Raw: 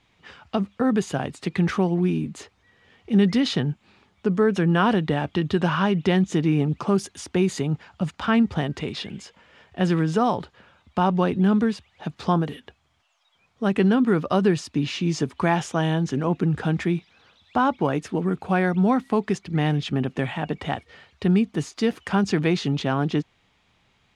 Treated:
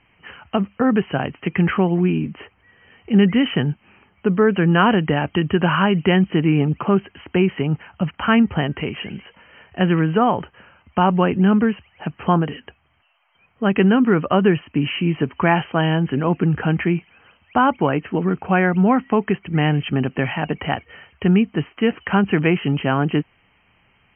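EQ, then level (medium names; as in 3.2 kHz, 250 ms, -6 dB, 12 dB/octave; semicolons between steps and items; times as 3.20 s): brick-wall FIR low-pass 3.2 kHz; distance through air 230 m; treble shelf 2 kHz +10.5 dB; +4.0 dB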